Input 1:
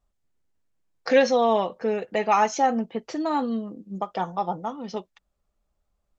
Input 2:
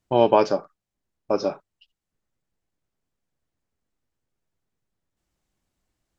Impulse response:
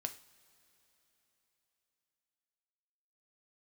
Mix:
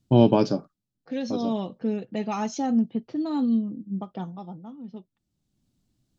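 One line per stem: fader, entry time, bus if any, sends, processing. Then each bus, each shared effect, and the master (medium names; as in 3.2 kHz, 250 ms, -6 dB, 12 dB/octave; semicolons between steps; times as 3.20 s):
1.05 s -16.5 dB -> 1.64 s -6 dB -> 4.14 s -6 dB -> 4.51 s -14 dB, 0.00 s, no send, level-controlled noise filter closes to 1.1 kHz, open at -18.5 dBFS
+0.5 dB, 0.00 s, no send, auto duck -12 dB, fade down 1.50 s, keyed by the first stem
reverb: none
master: graphic EQ 125/250/500/1000/2000/4000 Hz +12/+10/-4/-5/-7/+5 dB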